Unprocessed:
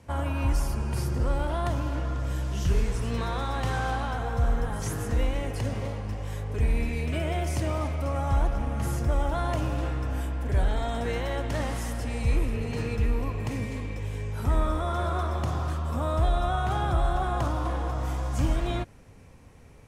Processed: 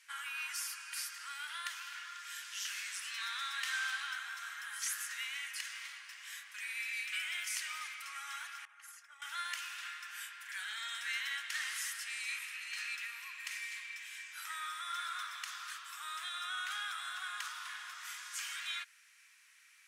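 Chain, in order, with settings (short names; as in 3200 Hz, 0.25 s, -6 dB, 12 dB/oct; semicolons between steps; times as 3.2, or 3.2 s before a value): 8.65–9.22 formant sharpening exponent 1.5; steep high-pass 1500 Hz 36 dB/oct; gain +2 dB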